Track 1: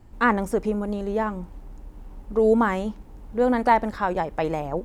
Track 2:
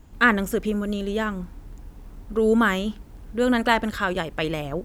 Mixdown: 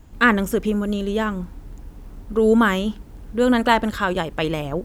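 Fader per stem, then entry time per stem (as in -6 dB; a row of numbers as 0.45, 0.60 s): -9.0, +2.0 dB; 0.00, 0.00 s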